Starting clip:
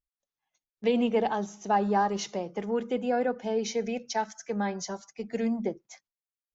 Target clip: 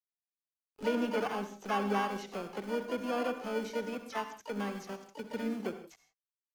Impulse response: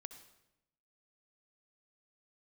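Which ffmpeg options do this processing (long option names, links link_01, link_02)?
-filter_complex "[0:a]highpass=49,aresample=16000,aeval=exprs='sgn(val(0))*max(abs(val(0))-0.00398,0)':channel_layout=same,aresample=44100,acompressor=mode=upward:threshold=-30dB:ratio=2.5,acrossover=split=310|1100[link_01][link_02][link_03];[link_02]acrusher=samples=23:mix=1:aa=0.000001[link_04];[link_01][link_04][link_03]amix=inputs=3:normalize=0,acrossover=split=3000[link_05][link_06];[link_06]acompressor=threshold=-47dB:ratio=4:attack=1:release=60[link_07];[link_05][link_07]amix=inputs=2:normalize=0,asplit=4[link_08][link_09][link_10][link_11];[link_09]asetrate=55563,aresample=44100,atempo=0.793701,volume=-13dB[link_12];[link_10]asetrate=58866,aresample=44100,atempo=0.749154,volume=-17dB[link_13];[link_11]asetrate=88200,aresample=44100,atempo=0.5,volume=-11dB[link_14];[link_08][link_12][link_13][link_14]amix=inputs=4:normalize=0[link_15];[1:a]atrim=start_sample=2205,afade=type=out:start_time=0.23:duration=0.01,atrim=end_sample=10584[link_16];[link_15][link_16]afir=irnorm=-1:irlink=0"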